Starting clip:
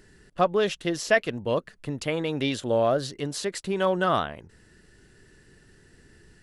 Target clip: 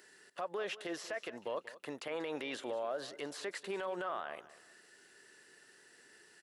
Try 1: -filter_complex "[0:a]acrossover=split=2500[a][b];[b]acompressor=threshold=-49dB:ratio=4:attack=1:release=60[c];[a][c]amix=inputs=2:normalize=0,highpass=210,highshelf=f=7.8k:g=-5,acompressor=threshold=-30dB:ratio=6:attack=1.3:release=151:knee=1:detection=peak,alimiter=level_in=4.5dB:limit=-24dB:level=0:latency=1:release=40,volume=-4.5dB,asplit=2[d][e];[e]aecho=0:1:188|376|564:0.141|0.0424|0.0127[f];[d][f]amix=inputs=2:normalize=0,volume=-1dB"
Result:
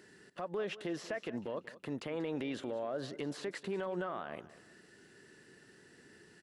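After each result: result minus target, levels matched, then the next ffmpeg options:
250 Hz band +5.5 dB; 8000 Hz band -5.0 dB
-filter_complex "[0:a]acrossover=split=2500[a][b];[b]acompressor=threshold=-49dB:ratio=4:attack=1:release=60[c];[a][c]amix=inputs=2:normalize=0,highpass=550,highshelf=f=7.8k:g=-5,acompressor=threshold=-30dB:ratio=6:attack=1.3:release=151:knee=1:detection=peak,alimiter=level_in=4.5dB:limit=-24dB:level=0:latency=1:release=40,volume=-4.5dB,asplit=2[d][e];[e]aecho=0:1:188|376|564:0.141|0.0424|0.0127[f];[d][f]amix=inputs=2:normalize=0,volume=-1dB"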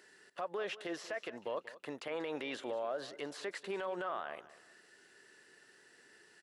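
8000 Hz band -3.5 dB
-filter_complex "[0:a]acrossover=split=2500[a][b];[b]acompressor=threshold=-49dB:ratio=4:attack=1:release=60[c];[a][c]amix=inputs=2:normalize=0,highpass=550,highshelf=f=7.8k:g=3,acompressor=threshold=-30dB:ratio=6:attack=1.3:release=151:knee=1:detection=peak,alimiter=level_in=4.5dB:limit=-24dB:level=0:latency=1:release=40,volume=-4.5dB,asplit=2[d][e];[e]aecho=0:1:188|376|564:0.141|0.0424|0.0127[f];[d][f]amix=inputs=2:normalize=0,volume=-1dB"

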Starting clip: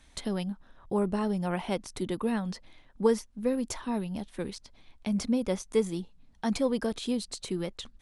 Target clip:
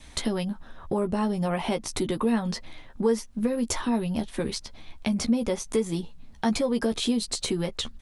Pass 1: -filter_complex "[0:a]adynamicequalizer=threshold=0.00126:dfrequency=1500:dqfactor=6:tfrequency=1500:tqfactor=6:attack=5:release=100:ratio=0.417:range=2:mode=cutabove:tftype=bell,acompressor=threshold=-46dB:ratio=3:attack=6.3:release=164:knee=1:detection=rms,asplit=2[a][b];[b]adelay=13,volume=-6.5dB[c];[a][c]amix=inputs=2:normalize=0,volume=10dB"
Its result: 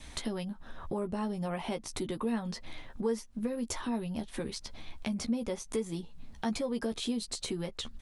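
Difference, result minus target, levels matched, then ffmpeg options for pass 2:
compressor: peak gain reduction +8 dB
-filter_complex "[0:a]adynamicequalizer=threshold=0.00126:dfrequency=1500:dqfactor=6:tfrequency=1500:tqfactor=6:attack=5:release=100:ratio=0.417:range=2:mode=cutabove:tftype=bell,acompressor=threshold=-34dB:ratio=3:attack=6.3:release=164:knee=1:detection=rms,asplit=2[a][b];[b]adelay=13,volume=-6.5dB[c];[a][c]amix=inputs=2:normalize=0,volume=10dB"

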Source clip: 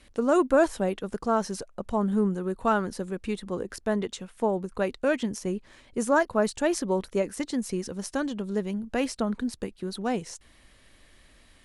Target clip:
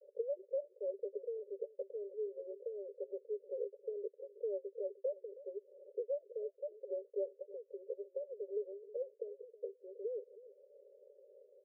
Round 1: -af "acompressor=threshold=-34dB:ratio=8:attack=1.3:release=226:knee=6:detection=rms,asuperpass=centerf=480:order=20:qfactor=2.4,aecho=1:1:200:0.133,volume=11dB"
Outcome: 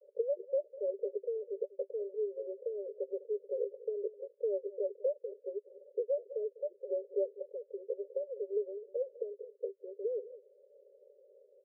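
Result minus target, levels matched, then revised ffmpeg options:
echo 0.119 s early; compressor: peak gain reduction -5 dB
-af "acompressor=threshold=-40dB:ratio=8:attack=1.3:release=226:knee=6:detection=rms,asuperpass=centerf=480:order=20:qfactor=2.4,aecho=1:1:319:0.133,volume=11dB"

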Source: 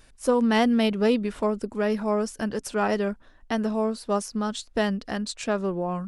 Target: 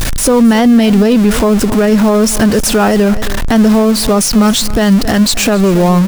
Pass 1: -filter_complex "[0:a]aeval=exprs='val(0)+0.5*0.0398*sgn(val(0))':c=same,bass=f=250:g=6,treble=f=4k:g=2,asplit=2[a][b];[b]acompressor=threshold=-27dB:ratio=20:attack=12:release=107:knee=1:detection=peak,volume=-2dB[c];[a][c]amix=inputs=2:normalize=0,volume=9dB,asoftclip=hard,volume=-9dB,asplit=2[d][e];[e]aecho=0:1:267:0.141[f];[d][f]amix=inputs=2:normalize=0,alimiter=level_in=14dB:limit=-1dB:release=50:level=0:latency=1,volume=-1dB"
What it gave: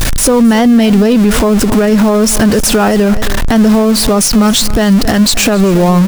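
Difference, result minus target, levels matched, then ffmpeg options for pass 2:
compressor: peak gain reduction -9.5 dB
-filter_complex "[0:a]aeval=exprs='val(0)+0.5*0.0398*sgn(val(0))':c=same,bass=f=250:g=6,treble=f=4k:g=2,asplit=2[a][b];[b]acompressor=threshold=-37dB:ratio=20:attack=12:release=107:knee=1:detection=peak,volume=-2dB[c];[a][c]amix=inputs=2:normalize=0,volume=9dB,asoftclip=hard,volume=-9dB,asplit=2[d][e];[e]aecho=0:1:267:0.141[f];[d][f]amix=inputs=2:normalize=0,alimiter=level_in=14dB:limit=-1dB:release=50:level=0:latency=1,volume=-1dB"

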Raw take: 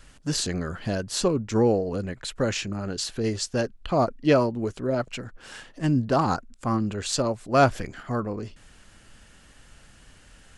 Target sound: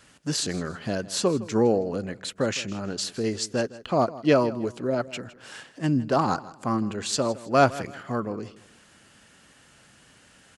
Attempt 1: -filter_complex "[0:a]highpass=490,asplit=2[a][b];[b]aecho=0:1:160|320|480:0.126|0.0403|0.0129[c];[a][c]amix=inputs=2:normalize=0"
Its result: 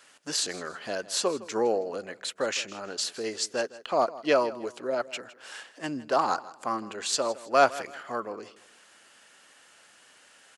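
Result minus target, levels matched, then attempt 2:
125 Hz band -16.0 dB
-filter_complex "[0:a]highpass=130,asplit=2[a][b];[b]aecho=0:1:160|320|480:0.126|0.0403|0.0129[c];[a][c]amix=inputs=2:normalize=0"

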